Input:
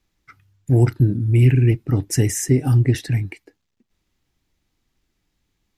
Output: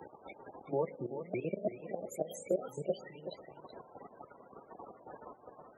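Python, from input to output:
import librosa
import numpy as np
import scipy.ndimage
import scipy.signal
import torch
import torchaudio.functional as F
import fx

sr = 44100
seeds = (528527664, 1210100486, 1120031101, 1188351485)

y = fx.pitch_ramps(x, sr, semitones=10.5, every_ms=335)
y = fx.high_shelf(y, sr, hz=2700.0, db=-11.0)
y = fx.rev_fdn(y, sr, rt60_s=1.9, lf_ratio=0.8, hf_ratio=0.75, size_ms=11.0, drr_db=16.5)
y = fx.dmg_noise_colour(y, sr, seeds[0], colour='brown', level_db=-32.0)
y = fx.level_steps(y, sr, step_db=16)
y = fx.spec_topn(y, sr, count=32)
y = scipy.signal.sosfilt(scipy.signal.butter(2, 680.0, 'highpass', fs=sr, output='sos'), y)
y = y + 10.0 ** (-13.0 / 20.0) * np.pad(y, (int(377 * sr / 1000.0), 0))[:len(y)]
y = fx.band_squash(y, sr, depth_pct=40)
y = F.gain(torch.from_numpy(y), 1.0).numpy()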